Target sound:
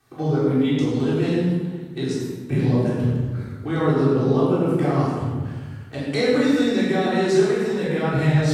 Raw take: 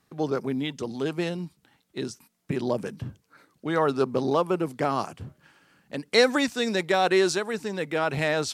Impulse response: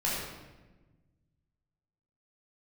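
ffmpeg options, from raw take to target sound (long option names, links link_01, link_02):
-filter_complex "[0:a]acrossover=split=310[link_01][link_02];[link_02]acompressor=threshold=-39dB:ratio=2.5[link_03];[link_01][link_03]amix=inputs=2:normalize=0[link_04];[1:a]atrim=start_sample=2205,asetrate=33957,aresample=44100[link_05];[link_04][link_05]afir=irnorm=-1:irlink=0"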